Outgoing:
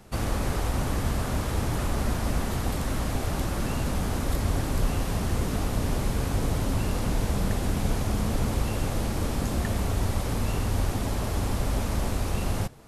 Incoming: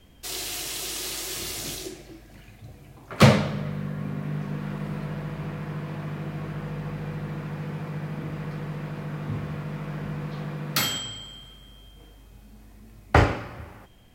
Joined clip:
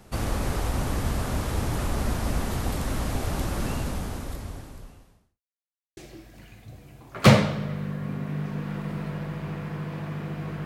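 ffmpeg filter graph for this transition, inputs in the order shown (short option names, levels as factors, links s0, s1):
-filter_complex "[0:a]apad=whole_dur=10.65,atrim=end=10.65,asplit=2[s0][s1];[s0]atrim=end=5.41,asetpts=PTS-STARTPTS,afade=t=out:st=3.68:d=1.73:c=qua[s2];[s1]atrim=start=5.41:end=5.97,asetpts=PTS-STARTPTS,volume=0[s3];[1:a]atrim=start=1.93:end=6.61,asetpts=PTS-STARTPTS,afade=t=in:d=0.004:c=hsin[s4];[s2][s3][s4]concat=n=3:v=0:a=1"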